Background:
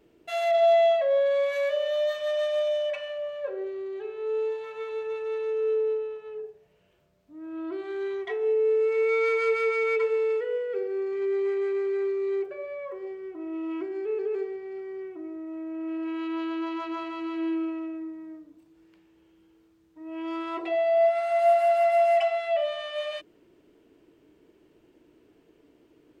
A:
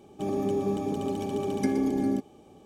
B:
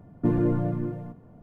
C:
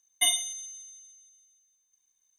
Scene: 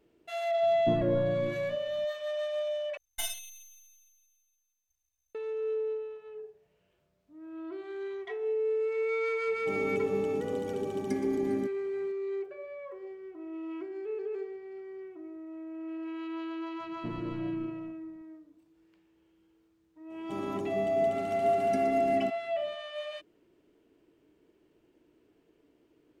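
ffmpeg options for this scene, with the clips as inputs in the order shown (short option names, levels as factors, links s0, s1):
-filter_complex "[2:a]asplit=2[s0][s1];[1:a]asplit=2[s2][s3];[0:a]volume=0.473[s4];[3:a]aeval=exprs='max(val(0),0)':c=same[s5];[s4]asplit=2[s6][s7];[s6]atrim=end=2.974[s8];[s5]atrim=end=2.38,asetpts=PTS-STARTPTS,volume=0.473[s9];[s7]atrim=start=5.346[s10];[s0]atrim=end=1.42,asetpts=PTS-STARTPTS,volume=0.422,afade=t=in:d=0.004:c=hsin,afade=t=out:st=1.416:d=0.004:c=hsin,adelay=630[s11];[s2]atrim=end=2.65,asetpts=PTS-STARTPTS,volume=0.473,afade=t=in:d=0.004:c=hsin,afade=t=out:st=2.646:d=0.004:c=hsin,adelay=9470[s12];[s1]atrim=end=1.42,asetpts=PTS-STARTPTS,volume=0.168,afade=t=in:d=0.004:c=hsin,afade=t=out:st=1.416:d=0.004:c=hsin,adelay=16800[s13];[s3]atrim=end=2.65,asetpts=PTS-STARTPTS,volume=0.398,afade=t=in:d=0.004:c=hsin,afade=t=out:st=2.646:d=0.004:c=hsin,adelay=20100[s14];[s8][s9]acrossfade=d=0.004:c1=hsin:c2=hsin[s15];[s15][s10]acrossfade=d=0.004:c1=hsin:c2=hsin[s16];[s16][s11][s12][s13][s14]amix=inputs=5:normalize=0"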